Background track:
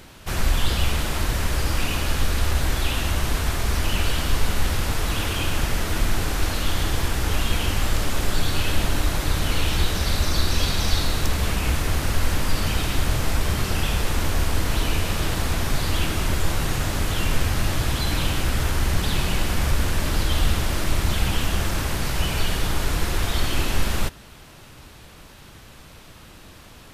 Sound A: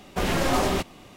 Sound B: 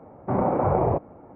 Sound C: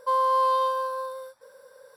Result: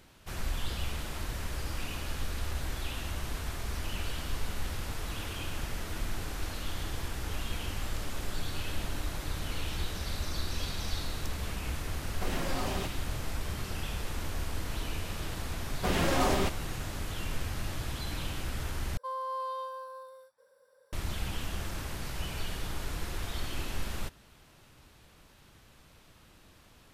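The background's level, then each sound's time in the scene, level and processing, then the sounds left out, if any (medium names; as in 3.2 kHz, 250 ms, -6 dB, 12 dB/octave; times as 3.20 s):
background track -13 dB
12.05 s: add A -7 dB + compression 2.5:1, threshold -26 dBFS
15.67 s: add A -4.5 dB
18.97 s: replace with C -13.5 dB
not used: B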